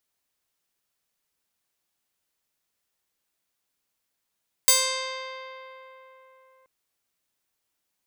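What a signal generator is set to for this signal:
Karplus-Strong string C5, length 1.98 s, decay 3.93 s, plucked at 0.37, bright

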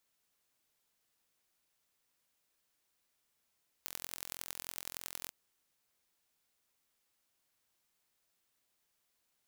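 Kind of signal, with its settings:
impulse train 43.3 per second, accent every 4, −11.5 dBFS 1.45 s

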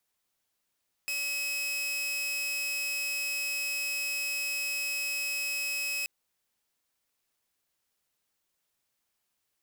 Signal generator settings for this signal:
tone saw 2,560 Hz −27.5 dBFS 4.98 s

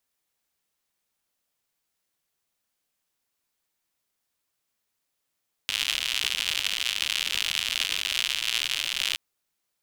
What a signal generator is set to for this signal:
rain-like ticks over hiss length 3.47 s, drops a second 120, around 3,000 Hz, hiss −25.5 dB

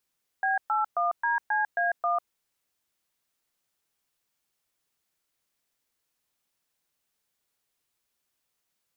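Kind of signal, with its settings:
touch tones "B81DCA1", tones 148 ms, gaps 120 ms, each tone −25.5 dBFS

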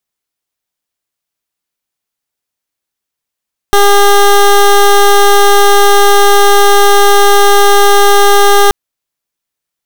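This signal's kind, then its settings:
pulse wave 404 Hz, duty 17% −5 dBFS 4.98 s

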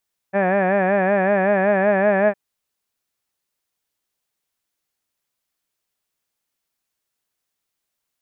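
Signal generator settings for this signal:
vowel by formant synthesis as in had, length 2.01 s, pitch 190 Hz, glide +1 semitone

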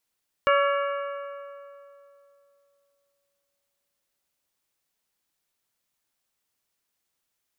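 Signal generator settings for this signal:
struck metal bell, length 5.00 s, lowest mode 564 Hz, modes 6, decay 2.92 s, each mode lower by 2.5 dB, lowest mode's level −19 dB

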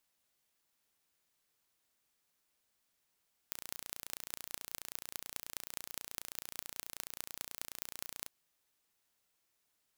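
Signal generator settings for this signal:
impulse train 29.3 per second, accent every 6, −10.5 dBFS 4.75 s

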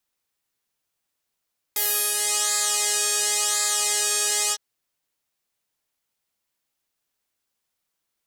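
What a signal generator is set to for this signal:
subtractive patch with pulse-width modulation G#4, oscillator 2 saw, interval +7 semitones, oscillator 2 level −5.5 dB, sub −21 dB, filter bandpass, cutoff 5,300 Hz, Q 2.1, filter envelope 1.5 octaves, filter decay 0.58 s, attack 6.4 ms, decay 0.38 s, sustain −6.5 dB, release 0.05 s, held 2.76 s, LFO 0.94 Hz, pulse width 28%, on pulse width 14%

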